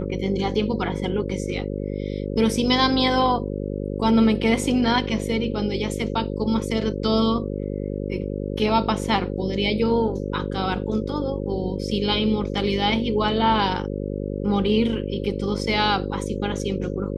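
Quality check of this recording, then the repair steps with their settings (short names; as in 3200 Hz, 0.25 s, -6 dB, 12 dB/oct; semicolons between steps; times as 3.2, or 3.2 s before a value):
buzz 50 Hz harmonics 11 -28 dBFS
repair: de-hum 50 Hz, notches 11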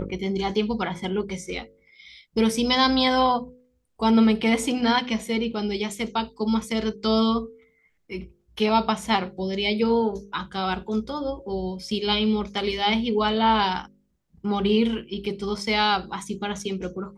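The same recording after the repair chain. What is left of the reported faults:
none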